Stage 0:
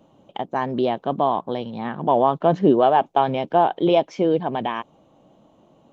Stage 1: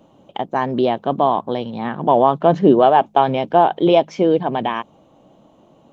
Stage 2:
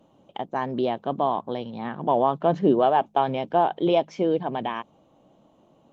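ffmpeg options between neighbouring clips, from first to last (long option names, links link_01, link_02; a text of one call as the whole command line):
ffmpeg -i in.wav -af "bandreject=frequency=52.44:width_type=h:width=4,bandreject=frequency=104.88:width_type=h:width=4,bandreject=frequency=157.32:width_type=h:width=4,bandreject=frequency=209.76:width_type=h:width=4,volume=4dB" out.wav
ffmpeg -i in.wav -af "volume=-7dB" -ar 48000 -c:a libmp3lame -b:a 80k out.mp3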